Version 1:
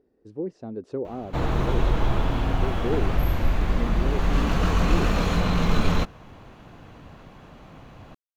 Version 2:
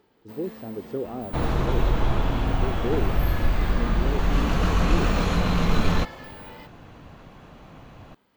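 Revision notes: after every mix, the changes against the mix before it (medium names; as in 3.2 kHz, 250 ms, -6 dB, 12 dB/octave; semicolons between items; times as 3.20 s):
first sound: unmuted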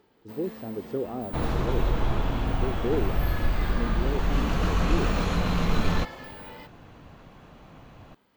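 second sound -3.0 dB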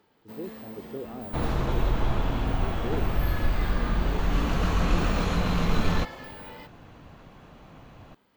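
speech -7.0 dB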